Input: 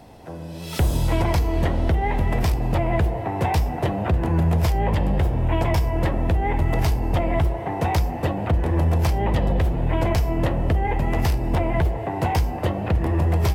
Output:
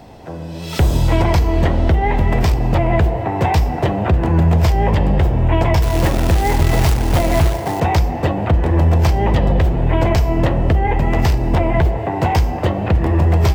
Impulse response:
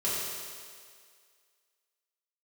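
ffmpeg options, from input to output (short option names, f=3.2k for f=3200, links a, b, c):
-filter_complex "[0:a]equalizer=f=11k:t=o:w=0.37:g=-13.5,asettb=1/sr,asplit=3[a][b][c];[a]atrim=end=5.824[d];[b]atrim=start=5.82:end=7.8,asetpts=PTS-STARTPTS,afade=t=in:d=0.004:c=qsin,afade=t=out:st=1.976:d=0.004:c=qsin,acrusher=bits=3:mode=log:mix=0:aa=0.000001[e];[c]atrim=start=7.796[f];[d][e]acrossfade=d=0.004:c1=hsin:c2=qsin[g];[g][f]acrossfade=d=0.004:c1=qsin:c2=hsin,asplit=2[h][i];[1:a]atrim=start_sample=2205,afade=t=out:st=0.31:d=0.01,atrim=end_sample=14112[j];[i][j]afir=irnorm=-1:irlink=0,volume=-25dB[k];[h][k]amix=inputs=2:normalize=0,volume=5.5dB"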